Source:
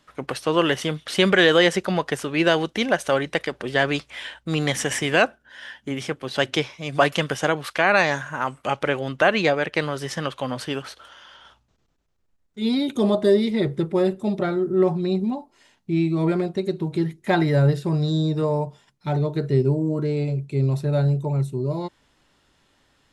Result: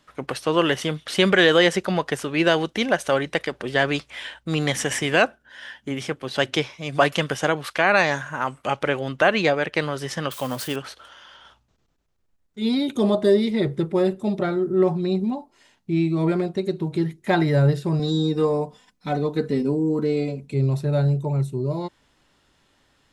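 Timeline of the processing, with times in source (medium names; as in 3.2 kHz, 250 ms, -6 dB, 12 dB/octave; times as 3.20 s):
10.31–10.76 s: zero-crossing glitches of -28.5 dBFS
17.99–20.54 s: comb 4 ms, depth 91%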